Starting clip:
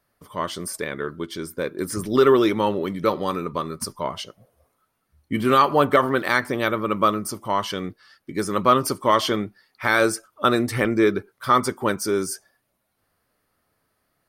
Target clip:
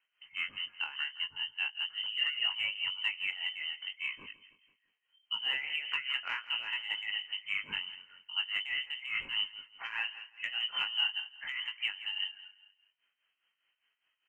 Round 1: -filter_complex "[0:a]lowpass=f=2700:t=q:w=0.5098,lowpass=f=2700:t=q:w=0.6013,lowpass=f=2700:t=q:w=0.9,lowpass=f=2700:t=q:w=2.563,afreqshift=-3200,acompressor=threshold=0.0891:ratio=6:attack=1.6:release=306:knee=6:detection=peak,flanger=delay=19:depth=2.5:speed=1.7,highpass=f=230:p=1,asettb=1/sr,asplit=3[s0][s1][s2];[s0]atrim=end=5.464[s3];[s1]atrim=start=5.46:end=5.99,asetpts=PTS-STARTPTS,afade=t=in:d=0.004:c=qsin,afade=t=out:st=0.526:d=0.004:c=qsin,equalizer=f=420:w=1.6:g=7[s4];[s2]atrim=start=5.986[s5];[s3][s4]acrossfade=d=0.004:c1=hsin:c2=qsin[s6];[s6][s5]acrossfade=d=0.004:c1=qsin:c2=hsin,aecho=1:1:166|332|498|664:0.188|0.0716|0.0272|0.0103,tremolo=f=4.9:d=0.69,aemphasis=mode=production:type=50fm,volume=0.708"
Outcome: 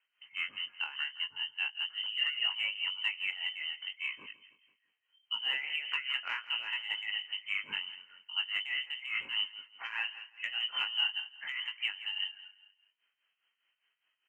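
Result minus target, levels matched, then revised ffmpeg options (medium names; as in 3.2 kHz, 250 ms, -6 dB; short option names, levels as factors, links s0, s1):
250 Hz band -3.0 dB
-filter_complex "[0:a]lowpass=f=2700:t=q:w=0.5098,lowpass=f=2700:t=q:w=0.6013,lowpass=f=2700:t=q:w=0.9,lowpass=f=2700:t=q:w=2.563,afreqshift=-3200,acompressor=threshold=0.0891:ratio=6:attack=1.6:release=306:knee=6:detection=peak,flanger=delay=19:depth=2.5:speed=1.7,asettb=1/sr,asplit=3[s0][s1][s2];[s0]atrim=end=5.464[s3];[s1]atrim=start=5.46:end=5.99,asetpts=PTS-STARTPTS,afade=t=in:d=0.004:c=qsin,afade=t=out:st=0.526:d=0.004:c=qsin,equalizer=f=420:w=1.6:g=7[s4];[s2]atrim=start=5.986[s5];[s3][s4]acrossfade=d=0.004:c1=hsin:c2=qsin[s6];[s6][s5]acrossfade=d=0.004:c1=qsin:c2=hsin,aecho=1:1:166|332|498|664:0.188|0.0716|0.0272|0.0103,tremolo=f=4.9:d=0.69,aemphasis=mode=production:type=50fm,volume=0.708"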